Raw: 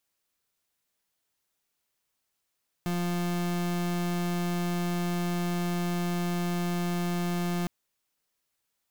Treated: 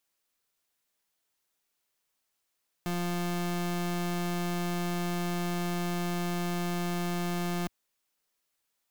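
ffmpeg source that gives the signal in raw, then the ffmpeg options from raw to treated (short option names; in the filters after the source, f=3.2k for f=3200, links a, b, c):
-f lavfi -i "aevalsrc='0.0355*(2*lt(mod(175*t,1),0.36)-1)':d=4.81:s=44100"
-af "equalizer=f=89:t=o:w=2.3:g=-5.5"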